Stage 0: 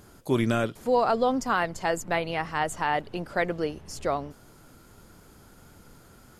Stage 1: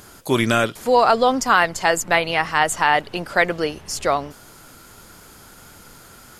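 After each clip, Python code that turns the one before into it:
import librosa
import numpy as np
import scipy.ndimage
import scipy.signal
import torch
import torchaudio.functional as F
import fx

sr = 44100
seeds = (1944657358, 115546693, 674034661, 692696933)

y = fx.tilt_shelf(x, sr, db=-5.0, hz=720.0)
y = y * librosa.db_to_amplitude(8.0)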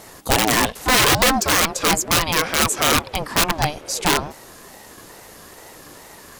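y = (np.mod(10.0 ** (12.0 / 20.0) * x + 1.0, 2.0) - 1.0) / 10.0 ** (12.0 / 20.0)
y = fx.ring_lfo(y, sr, carrier_hz=420.0, swing_pct=30, hz=2.3)
y = y * librosa.db_to_amplitude(5.5)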